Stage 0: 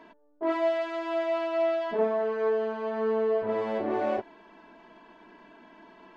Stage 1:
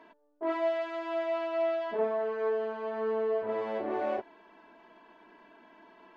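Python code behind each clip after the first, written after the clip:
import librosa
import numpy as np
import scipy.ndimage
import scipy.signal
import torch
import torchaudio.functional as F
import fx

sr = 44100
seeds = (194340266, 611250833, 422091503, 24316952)

y = fx.bass_treble(x, sr, bass_db=-7, treble_db=-4)
y = y * librosa.db_to_amplitude(-3.0)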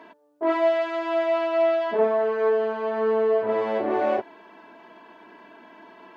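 y = scipy.signal.sosfilt(scipy.signal.butter(2, 63.0, 'highpass', fs=sr, output='sos'), x)
y = y * librosa.db_to_amplitude(8.5)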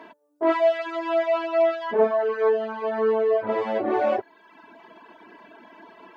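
y = fx.dereverb_blind(x, sr, rt60_s=0.97)
y = y * librosa.db_to_amplitude(2.5)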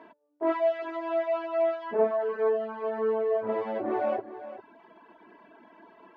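y = fx.high_shelf(x, sr, hz=2900.0, db=-11.5)
y = y + 10.0 ** (-13.5 / 20.0) * np.pad(y, (int(401 * sr / 1000.0), 0))[:len(y)]
y = y * librosa.db_to_amplitude(-5.0)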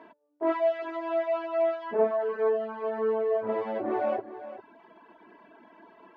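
y = fx.quant_float(x, sr, bits=8)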